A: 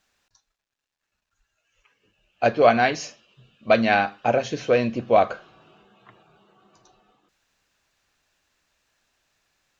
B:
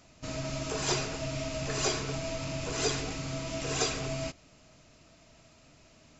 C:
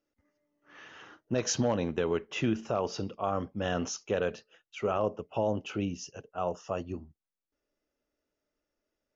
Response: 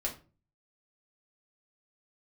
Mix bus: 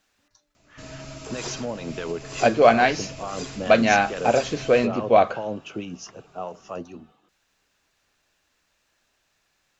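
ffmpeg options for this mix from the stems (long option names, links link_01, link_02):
-filter_complex "[0:a]bandreject=frequency=60:width_type=h:width=6,bandreject=frequency=120:width_type=h:width=6,volume=1dB[link_01];[1:a]adelay=550,volume=-4dB[link_02];[2:a]highpass=frequency=120:width=0.5412,highpass=frequency=120:width=1.3066,acontrast=85,acrossover=split=880[link_03][link_04];[link_03]aeval=exprs='val(0)*(1-0.7/2+0.7/2*cos(2*PI*4.7*n/s))':channel_layout=same[link_05];[link_04]aeval=exprs='val(0)*(1-0.7/2-0.7/2*cos(2*PI*4.7*n/s))':channel_layout=same[link_06];[link_05][link_06]amix=inputs=2:normalize=0,volume=-3dB[link_07];[link_02][link_07]amix=inputs=2:normalize=0,alimiter=limit=-19.5dB:level=0:latency=1:release=235,volume=0dB[link_08];[link_01][link_08]amix=inputs=2:normalize=0"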